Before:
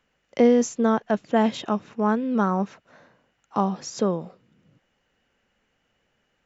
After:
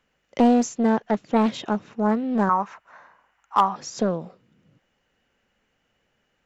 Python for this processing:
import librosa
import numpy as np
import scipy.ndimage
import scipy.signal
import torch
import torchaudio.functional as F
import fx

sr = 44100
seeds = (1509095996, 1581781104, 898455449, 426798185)

y = fx.graphic_eq(x, sr, hz=(125, 250, 500, 1000, 2000, 4000), db=(-11, -8, -6, 12, 3, -5), at=(2.49, 3.76))
y = np.clip(y, -10.0 ** (-8.5 / 20.0), 10.0 ** (-8.5 / 20.0))
y = fx.doppler_dist(y, sr, depth_ms=0.42)